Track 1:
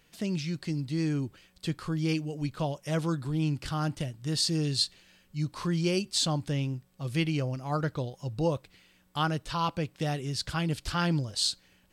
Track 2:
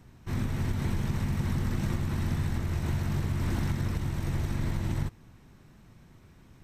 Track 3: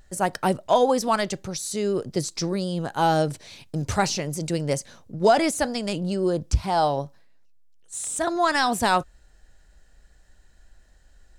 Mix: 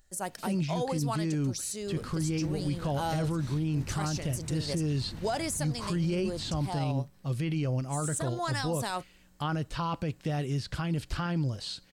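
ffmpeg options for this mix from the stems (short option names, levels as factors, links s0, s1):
-filter_complex "[0:a]acrossover=split=3000[s0][s1];[s1]acompressor=threshold=0.00631:ratio=4:attack=1:release=60[s2];[s0][s2]amix=inputs=2:normalize=0,lowshelf=f=410:g=3.5,bandreject=f=3500:w=29,adelay=250,volume=1.06[s3];[1:a]adelay=1600,volume=0.2[s4];[2:a]highshelf=f=4700:g=11,volume=0.251[s5];[s3][s4][s5]amix=inputs=3:normalize=0,alimiter=limit=0.075:level=0:latency=1:release=13"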